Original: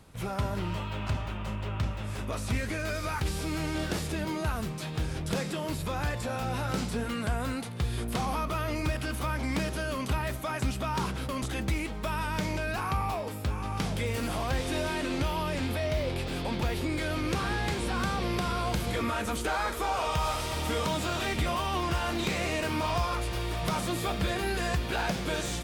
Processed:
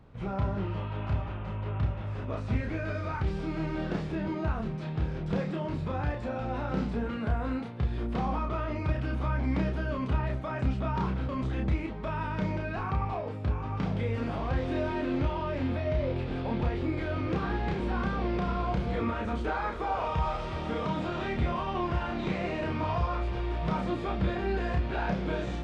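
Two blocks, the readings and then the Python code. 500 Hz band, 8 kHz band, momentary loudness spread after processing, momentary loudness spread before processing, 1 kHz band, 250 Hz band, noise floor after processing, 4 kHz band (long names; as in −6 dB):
0.0 dB, below −20 dB, 3 LU, 4 LU, −1.5 dB, +1.5 dB, −36 dBFS, −10.0 dB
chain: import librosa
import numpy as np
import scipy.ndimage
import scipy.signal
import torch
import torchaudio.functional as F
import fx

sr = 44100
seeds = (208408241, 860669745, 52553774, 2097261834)

y = fx.spacing_loss(x, sr, db_at_10k=34)
y = fx.doubler(y, sr, ms=31.0, db=-3)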